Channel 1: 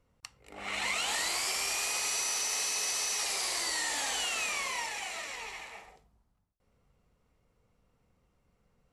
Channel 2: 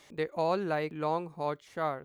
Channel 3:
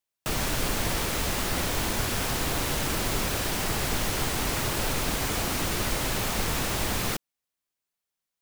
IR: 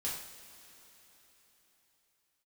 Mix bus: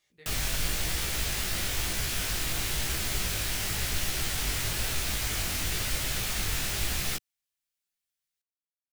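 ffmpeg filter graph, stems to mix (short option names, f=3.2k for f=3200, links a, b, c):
-filter_complex "[1:a]volume=-12dB,asplit=2[a][b];[b]volume=-13dB[c];[2:a]volume=3dB[d];[3:a]atrim=start_sample=2205[e];[c][e]afir=irnorm=-1:irlink=0[f];[a][d][f]amix=inputs=3:normalize=0,equalizer=f=125:t=o:w=1:g=-3,equalizer=f=250:t=o:w=1:g=-9,equalizer=f=500:t=o:w=1:g=-7,equalizer=f=1k:t=o:w=1:g=-9,flanger=delay=15:depth=6.5:speed=0.99"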